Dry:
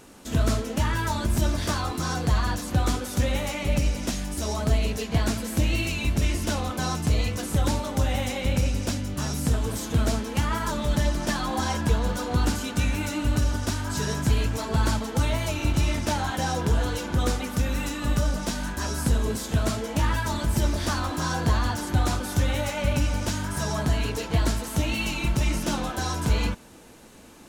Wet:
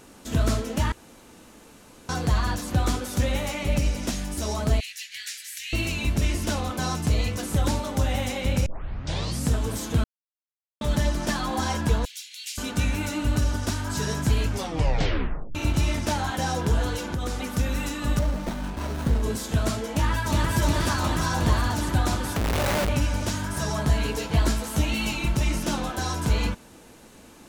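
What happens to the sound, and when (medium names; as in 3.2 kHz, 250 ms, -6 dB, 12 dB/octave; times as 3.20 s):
0.92–2.09 s: room tone
4.80–5.73 s: elliptic high-pass 1.8 kHz, stop band 50 dB
8.66 s: tape start 0.82 s
10.04–10.81 s: mute
12.05–12.58 s: steep high-pass 2.2 kHz 48 dB/octave
14.46 s: tape stop 1.09 s
16.95–17.47 s: compression, threshold -24 dBFS
18.19–19.23 s: sliding maximum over 17 samples
19.93–20.53 s: echo throw 360 ms, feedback 80%, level -1 dB
22.36–22.89 s: Schmitt trigger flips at -31.5 dBFS
23.85–25.16 s: doubling 14 ms -6 dB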